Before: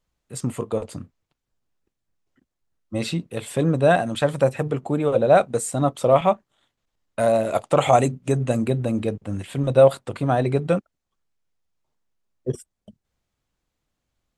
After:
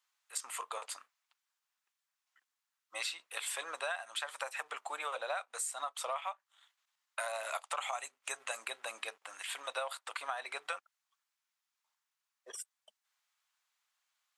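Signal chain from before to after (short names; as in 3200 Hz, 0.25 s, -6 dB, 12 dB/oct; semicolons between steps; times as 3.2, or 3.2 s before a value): HPF 980 Hz 24 dB/oct; compressor 10:1, threshold -36 dBFS, peak gain reduction 17 dB; gain +1.5 dB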